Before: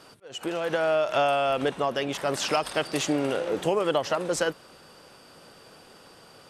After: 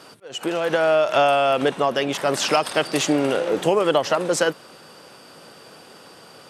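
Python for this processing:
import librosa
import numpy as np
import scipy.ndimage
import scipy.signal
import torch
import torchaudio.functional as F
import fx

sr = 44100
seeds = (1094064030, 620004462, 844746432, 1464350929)

y = scipy.signal.sosfilt(scipy.signal.butter(2, 120.0, 'highpass', fs=sr, output='sos'), x)
y = y * 10.0 ** (6.0 / 20.0)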